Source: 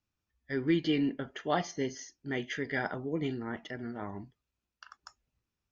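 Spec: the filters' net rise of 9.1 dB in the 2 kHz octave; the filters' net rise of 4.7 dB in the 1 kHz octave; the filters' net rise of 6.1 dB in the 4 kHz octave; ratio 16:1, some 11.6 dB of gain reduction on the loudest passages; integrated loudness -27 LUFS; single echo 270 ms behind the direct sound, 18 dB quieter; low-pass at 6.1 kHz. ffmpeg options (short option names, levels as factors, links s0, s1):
-af "lowpass=6100,equalizer=f=1000:t=o:g=4.5,equalizer=f=2000:t=o:g=8.5,equalizer=f=4000:t=o:g=4.5,acompressor=threshold=0.0251:ratio=16,aecho=1:1:270:0.126,volume=3.55"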